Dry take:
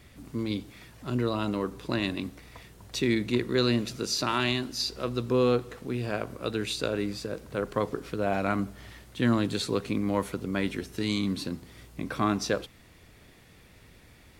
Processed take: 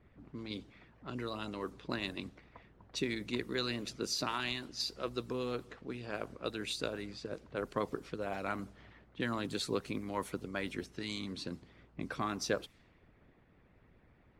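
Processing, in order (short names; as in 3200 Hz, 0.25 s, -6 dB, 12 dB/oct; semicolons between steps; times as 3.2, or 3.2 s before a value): harmonic-percussive split harmonic -11 dB; low-pass opened by the level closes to 1400 Hz, open at -30 dBFS; gain -4.5 dB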